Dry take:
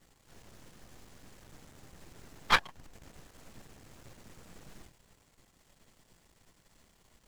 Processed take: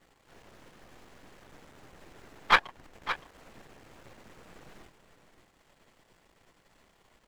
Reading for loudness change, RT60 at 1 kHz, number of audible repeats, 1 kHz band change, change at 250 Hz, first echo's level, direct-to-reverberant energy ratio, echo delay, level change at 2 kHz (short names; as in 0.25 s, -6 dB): 0.0 dB, none, 1, +4.5 dB, +0.5 dB, -11.5 dB, none, 0.567 s, +4.5 dB